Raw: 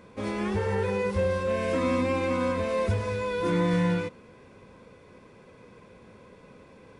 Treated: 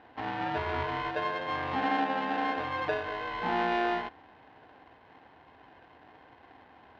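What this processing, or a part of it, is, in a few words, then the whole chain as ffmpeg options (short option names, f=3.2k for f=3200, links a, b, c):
ring modulator pedal into a guitar cabinet: -af "aeval=exprs='val(0)*sgn(sin(2*PI*530*n/s))':c=same,highpass=76,equalizer=f=83:t=q:w=4:g=5,equalizer=f=260:t=q:w=4:g=7,equalizer=f=520:t=q:w=4:g=4,equalizer=f=810:t=q:w=4:g=9,equalizer=f=1.7k:t=q:w=4:g=6,lowpass=f=3.6k:w=0.5412,lowpass=f=3.6k:w=1.3066,volume=-7.5dB"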